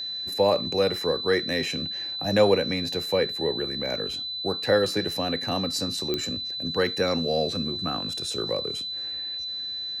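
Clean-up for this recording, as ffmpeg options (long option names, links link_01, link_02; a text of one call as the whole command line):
ffmpeg -i in.wav -af "adeclick=threshold=4,bandreject=frequency=4000:width=30" out.wav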